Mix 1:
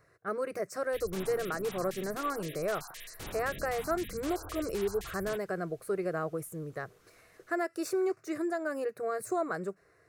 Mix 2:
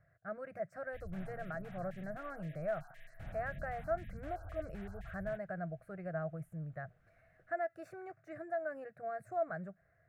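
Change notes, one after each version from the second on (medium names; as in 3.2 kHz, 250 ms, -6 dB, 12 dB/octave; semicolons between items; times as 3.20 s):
master: add FFT filter 160 Hz 0 dB, 420 Hz -23 dB, 660 Hz 0 dB, 1 kHz -19 dB, 1.6 kHz -5 dB, 4.8 kHz -28 dB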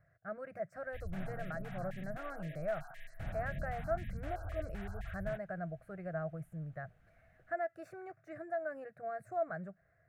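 background +5.5 dB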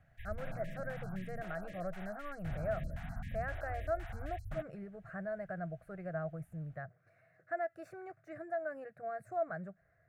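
background: entry -0.75 s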